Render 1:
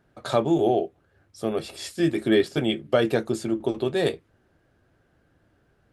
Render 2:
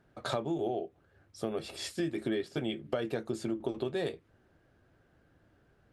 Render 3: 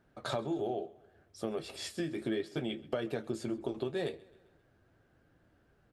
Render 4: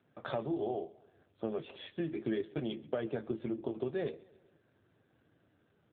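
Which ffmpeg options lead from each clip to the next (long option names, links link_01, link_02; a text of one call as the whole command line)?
ffmpeg -i in.wav -af "highshelf=frequency=8300:gain=-6,acompressor=threshold=-28dB:ratio=6,volume=-2dB" out.wav
ffmpeg -i in.wav -af "flanger=delay=3.2:depth=7.7:regen=-70:speed=0.71:shape=triangular,aecho=1:1:132|264|396|528:0.0794|0.0405|0.0207|0.0105,volume=2.5dB" out.wav
ffmpeg -i in.wav -ar 8000 -c:a libopencore_amrnb -b:a 7400 out.amr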